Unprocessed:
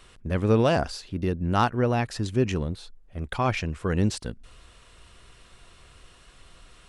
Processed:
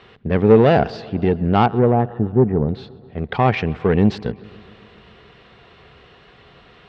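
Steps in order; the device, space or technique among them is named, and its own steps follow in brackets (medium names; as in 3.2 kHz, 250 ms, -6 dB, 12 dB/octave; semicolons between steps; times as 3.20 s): 1.66–2.69 s: Bessel low-pass 920 Hz, order 8; analogue delay pedal into a guitar amplifier (bucket-brigade echo 132 ms, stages 4096, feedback 72%, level -23.5 dB; valve stage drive 18 dB, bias 0.45; cabinet simulation 75–4000 Hz, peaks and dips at 140 Hz +6 dB, 210 Hz +6 dB, 430 Hz +10 dB, 770 Hz +7 dB, 1.9 kHz +4 dB); trim +7 dB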